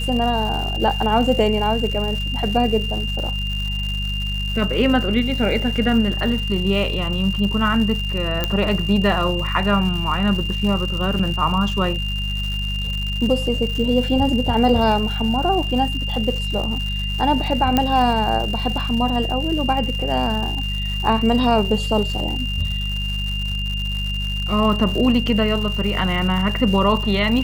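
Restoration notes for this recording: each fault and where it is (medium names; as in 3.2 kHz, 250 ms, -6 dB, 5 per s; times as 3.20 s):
crackle 220 per s -27 dBFS
hum 50 Hz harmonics 4 -25 dBFS
whine 2.8 kHz -26 dBFS
8.44 s: pop -6 dBFS
11.19 s: dropout 4.9 ms
17.77 s: pop -4 dBFS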